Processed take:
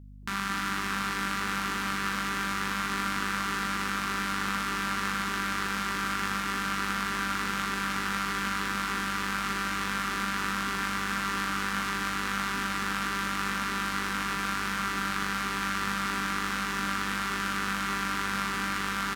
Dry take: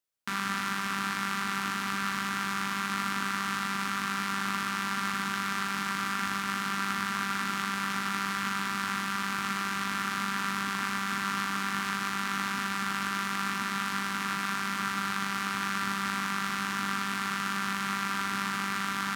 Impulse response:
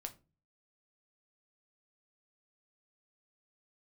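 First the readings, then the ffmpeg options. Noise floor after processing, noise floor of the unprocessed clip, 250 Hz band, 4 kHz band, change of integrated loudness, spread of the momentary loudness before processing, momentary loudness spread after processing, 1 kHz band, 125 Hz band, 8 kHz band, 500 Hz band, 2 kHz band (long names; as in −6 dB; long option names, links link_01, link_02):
−32 dBFS, −33 dBFS, +0.5 dB, +1.0 dB, +1.0 dB, 1 LU, 1 LU, +0.5 dB, +1.0 dB, +1.0 dB, +4.5 dB, +1.0 dB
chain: -filter_complex "[0:a]aeval=exprs='val(0)+0.00501*(sin(2*PI*50*n/s)+sin(2*PI*2*50*n/s)/2+sin(2*PI*3*50*n/s)/3+sin(2*PI*4*50*n/s)/4+sin(2*PI*5*50*n/s)/5)':channel_layout=same,asplit=8[link_01][link_02][link_03][link_04][link_05][link_06][link_07][link_08];[link_02]adelay=228,afreqshift=100,volume=-9dB[link_09];[link_03]adelay=456,afreqshift=200,volume=-13.6dB[link_10];[link_04]adelay=684,afreqshift=300,volume=-18.2dB[link_11];[link_05]adelay=912,afreqshift=400,volume=-22.7dB[link_12];[link_06]adelay=1140,afreqshift=500,volume=-27.3dB[link_13];[link_07]adelay=1368,afreqshift=600,volume=-31.9dB[link_14];[link_08]adelay=1596,afreqshift=700,volume=-36.5dB[link_15];[link_01][link_09][link_10][link_11][link_12][link_13][link_14][link_15]amix=inputs=8:normalize=0"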